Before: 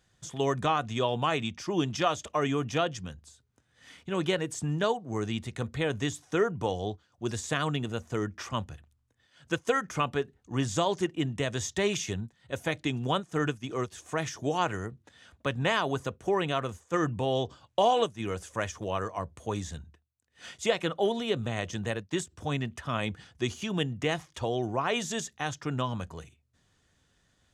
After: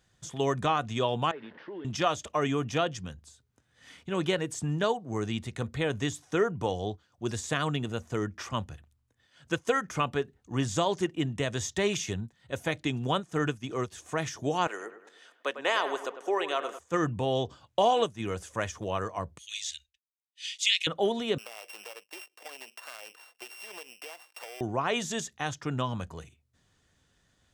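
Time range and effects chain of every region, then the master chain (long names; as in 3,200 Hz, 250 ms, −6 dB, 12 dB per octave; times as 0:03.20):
0:01.31–0:01.85: linear delta modulator 32 kbit/s, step −39.5 dBFS + loudspeaker in its box 360–2,500 Hz, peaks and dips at 410 Hz +3 dB, 730 Hz −9 dB, 1,200 Hz −9 dB, 1,700 Hz +3 dB, 2,400 Hz −10 dB + downward compressor 3 to 1, threshold −40 dBFS
0:14.67–0:16.79: high-pass filter 360 Hz 24 dB per octave + delay with a low-pass on its return 101 ms, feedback 46%, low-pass 2,500 Hz, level −10.5 dB
0:19.38–0:20.87: meter weighting curve D + downward expander −50 dBFS + inverse Chebyshev band-stop filter 120–1,000 Hz, stop band 50 dB
0:21.38–0:24.61: samples sorted by size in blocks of 16 samples + high-pass filter 490 Hz 24 dB per octave + downward compressor 8 to 1, threshold −39 dBFS
whole clip: no processing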